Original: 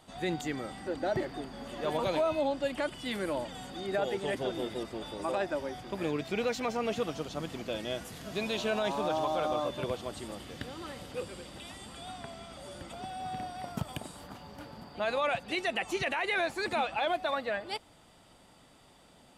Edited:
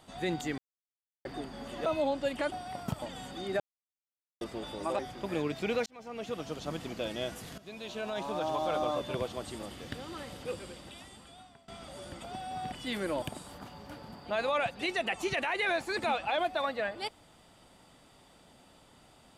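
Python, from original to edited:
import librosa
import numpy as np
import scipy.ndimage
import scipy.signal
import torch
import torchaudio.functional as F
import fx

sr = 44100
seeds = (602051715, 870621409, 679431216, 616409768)

y = fx.edit(x, sr, fx.silence(start_s=0.58, length_s=0.67),
    fx.cut(start_s=1.86, length_s=0.39),
    fx.swap(start_s=2.91, length_s=0.5, other_s=13.41, other_length_s=0.5),
    fx.silence(start_s=3.99, length_s=0.81),
    fx.cut(start_s=5.38, length_s=0.3),
    fx.fade_in_span(start_s=6.55, length_s=0.8),
    fx.fade_in_from(start_s=8.27, length_s=1.18, floor_db=-16.0),
    fx.fade_out_to(start_s=11.28, length_s=1.09, floor_db=-21.0), tone=tone)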